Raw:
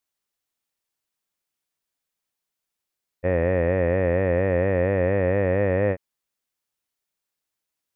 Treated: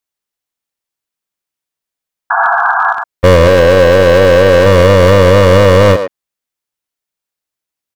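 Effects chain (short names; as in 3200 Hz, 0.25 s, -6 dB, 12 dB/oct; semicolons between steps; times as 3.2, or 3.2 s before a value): 3.47–4.66 low shelf 140 Hz -9 dB; sample leveller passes 5; 2.3–2.93 painted sound noise 670–1700 Hz -19 dBFS; speakerphone echo 0.11 s, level -9 dB; maximiser +11 dB; gain -1 dB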